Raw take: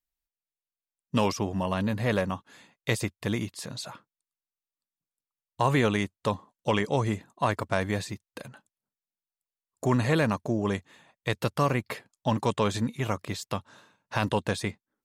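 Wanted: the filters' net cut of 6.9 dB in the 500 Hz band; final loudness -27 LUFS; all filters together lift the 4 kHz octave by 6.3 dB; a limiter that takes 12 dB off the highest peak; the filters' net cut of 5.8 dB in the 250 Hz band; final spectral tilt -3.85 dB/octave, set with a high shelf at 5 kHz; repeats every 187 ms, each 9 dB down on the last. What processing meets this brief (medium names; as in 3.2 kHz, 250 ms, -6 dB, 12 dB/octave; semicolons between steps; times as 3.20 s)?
peaking EQ 250 Hz -6 dB; peaking EQ 500 Hz -7 dB; peaking EQ 4 kHz +5 dB; treble shelf 5 kHz +7 dB; peak limiter -21.5 dBFS; feedback delay 187 ms, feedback 35%, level -9 dB; trim +6.5 dB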